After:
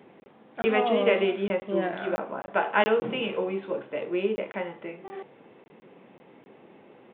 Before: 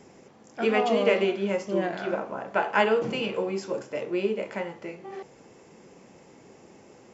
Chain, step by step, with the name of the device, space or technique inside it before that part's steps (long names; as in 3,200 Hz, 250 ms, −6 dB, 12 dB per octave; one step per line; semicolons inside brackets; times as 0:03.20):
call with lost packets (high-pass filter 150 Hz 12 dB per octave; downsampling to 8,000 Hz; dropped packets)